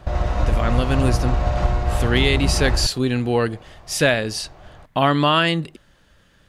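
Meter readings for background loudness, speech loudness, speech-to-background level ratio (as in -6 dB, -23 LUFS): -22.5 LUFS, -21.0 LUFS, 1.5 dB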